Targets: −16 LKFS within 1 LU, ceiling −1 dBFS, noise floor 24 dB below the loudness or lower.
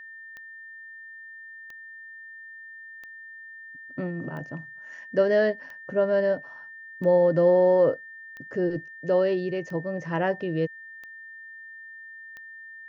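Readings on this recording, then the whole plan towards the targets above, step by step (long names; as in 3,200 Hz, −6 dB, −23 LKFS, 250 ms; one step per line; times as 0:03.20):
number of clicks 10; interfering tone 1,800 Hz; level of the tone −41 dBFS; integrated loudness −25.0 LKFS; sample peak −10.5 dBFS; target loudness −16.0 LKFS
→ click removal
notch filter 1,800 Hz, Q 30
level +9 dB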